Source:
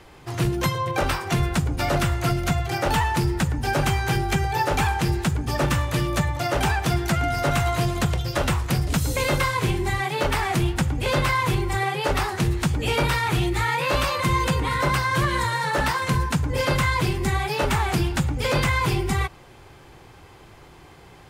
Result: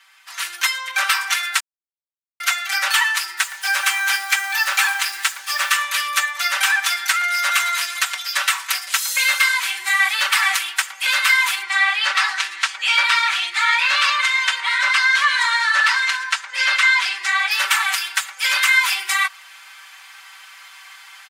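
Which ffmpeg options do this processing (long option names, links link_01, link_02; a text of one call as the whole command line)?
ffmpeg -i in.wav -filter_complex "[0:a]asettb=1/sr,asplit=3[link_01][link_02][link_03];[link_01]atrim=end=3.374[link_04];[link_02]atrim=start=3.37:end=5.7,asetpts=PTS-STARTPTS,afade=type=in:duration=0.004:curve=qsin,afade=type=out:start_time=2.326:duration=0.004:curve=qsin,acrusher=bits=6:mix=0:aa=0.5[link_05];[link_03]atrim=start=5.696[link_06];[link_04][link_05]acrossfade=duration=0.004:curve1=hsin:curve2=qsin[link_07];[link_07][link_06]acrossfade=duration=0.004:curve1=qsin:curve2=hsin,asettb=1/sr,asplit=3[link_08][link_09][link_10];[link_08]atrim=end=6.434[link_11];[link_09]atrim=start=6.43:end=9.05,asetpts=PTS-STARTPTS,afade=type=in:duration=0.004:curve=qsin,afade=type=out:start_time=2.616:duration=0.004:curve=qsin,highpass=210[link_12];[link_10]atrim=start=9.046[link_13];[link_11][link_12]acrossfade=duration=0.004:curve1=hsin:curve2=qsin[link_14];[link_14][link_13]acrossfade=duration=0.004:curve1=qsin:curve2=hsin,asettb=1/sr,asplit=3[link_15][link_16][link_17];[link_15]atrim=end=11.624[link_18];[link_16]atrim=start=11.62:end=17.51,asetpts=PTS-STARTPTS,afade=type=in:duration=0.004:curve=qsin,afade=type=out:start_time=5.886:duration=0.004:curve=qsin,highpass=180,lowpass=5800[link_19];[link_17]atrim=start=17.506[link_20];[link_18][link_19]acrossfade=duration=0.004:curve1=hsin:curve2=qsin[link_21];[link_21][link_20]acrossfade=duration=0.004:curve1=qsin:curve2=hsin,asplit=3[link_22][link_23][link_24];[link_22]atrim=end=1.6,asetpts=PTS-STARTPTS,afade=type=out:start_time=1.596:duration=0.004:curve=hsin[link_25];[link_23]atrim=start=1.6:end=2.4,asetpts=PTS-STARTPTS,volume=0[link_26];[link_24]atrim=start=2.4,asetpts=PTS-STARTPTS,afade=type=in:duration=0.004:curve=hsin[link_27];[link_25][link_26][link_27]concat=n=3:v=0:a=1,highpass=frequency=1300:width=0.5412,highpass=frequency=1300:width=1.3066,aecho=1:1:5.2:0.96,dynaudnorm=framelen=250:gausssize=3:maxgain=11.5dB,volume=-1.5dB" out.wav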